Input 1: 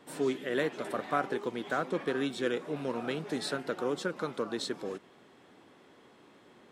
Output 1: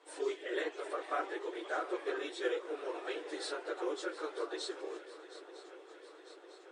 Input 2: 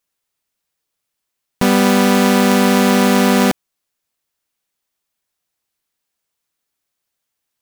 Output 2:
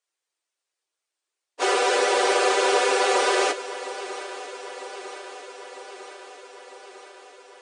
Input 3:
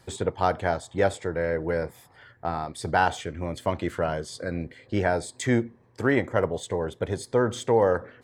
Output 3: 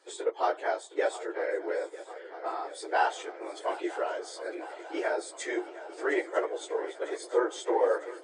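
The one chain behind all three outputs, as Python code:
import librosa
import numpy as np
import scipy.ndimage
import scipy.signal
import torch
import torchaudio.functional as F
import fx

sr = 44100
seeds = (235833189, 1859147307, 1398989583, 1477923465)

y = fx.phase_scramble(x, sr, seeds[0], window_ms=50)
y = fx.brickwall_bandpass(y, sr, low_hz=300.0, high_hz=9800.0)
y = fx.echo_swing(y, sr, ms=951, ratio=3, feedback_pct=65, wet_db=-16.0)
y = F.gain(torch.from_numpy(y), -4.5).numpy()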